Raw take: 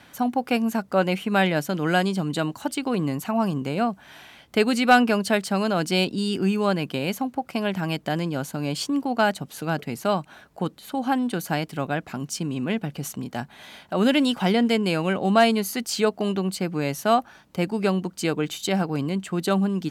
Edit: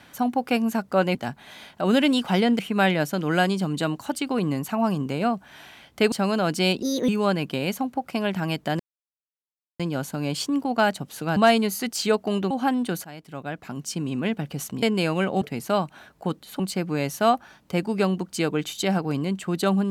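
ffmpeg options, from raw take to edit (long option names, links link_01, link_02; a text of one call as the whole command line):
ffmpeg -i in.wav -filter_complex "[0:a]asplit=13[link_01][link_02][link_03][link_04][link_05][link_06][link_07][link_08][link_09][link_10][link_11][link_12][link_13];[link_01]atrim=end=1.152[link_14];[link_02]atrim=start=13.268:end=14.712[link_15];[link_03]atrim=start=1.148:end=4.682[link_16];[link_04]atrim=start=5.438:end=6.144[link_17];[link_05]atrim=start=6.14:end=6.49,asetpts=PTS-STARTPTS,asetrate=58212,aresample=44100,atrim=end_sample=11693,asetpts=PTS-STARTPTS[link_18];[link_06]atrim=start=6.486:end=8.2,asetpts=PTS-STARTPTS,afade=type=out:start_time=1.71:duration=0.004:curve=hsin,apad=pad_dur=1[link_19];[link_07]atrim=start=8.2:end=9.772,asetpts=PTS-STARTPTS,afade=type=in:duration=0.004:curve=hsin[link_20];[link_08]atrim=start=15.298:end=16.442[link_21];[link_09]atrim=start=10.948:end=11.49,asetpts=PTS-STARTPTS,afade=type=out:start_time=0.538:duration=0.004:curve=hsin:silence=0.105925[link_22];[link_10]atrim=start=11.49:end=13.272,asetpts=PTS-STARTPTS,afade=type=in:duration=1.01:silence=0.105925[link_23];[link_11]atrim=start=14.708:end=15.302[link_24];[link_12]atrim=start=9.768:end=10.952[link_25];[link_13]atrim=start=16.438[link_26];[link_14][link_15]acrossfade=duration=0.004:curve1=hsin:curve2=hsin[link_27];[link_27][link_16]acrossfade=duration=0.004:curve1=hsin:curve2=hsin[link_28];[link_28][link_17]acrossfade=duration=0.004:curve1=hsin:curve2=hsin[link_29];[link_29][link_18]acrossfade=duration=0.004:curve1=hsin:curve2=hsin[link_30];[link_19][link_20]concat=n=2:v=0:a=1[link_31];[link_30][link_31]acrossfade=duration=0.004:curve1=hsin:curve2=hsin[link_32];[link_32][link_21]acrossfade=duration=0.004:curve1=hsin:curve2=hsin[link_33];[link_22][link_23]concat=n=2:v=0:a=1[link_34];[link_33][link_34]acrossfade=duration=0.004:curve1=hsin:curve2=hsin[link_35];[link_35][link_24]acrossfade=duration=0.004:curve1=hsin:curve2=hsin[link_36];[link_36][link_25]acrossfade=duration=0.004:curve1=hsin:curve2=hsin[link_37];[link_37][link_26]acrossfade=duration=0.004:curve1=hsin:curve2=hsin" out.wav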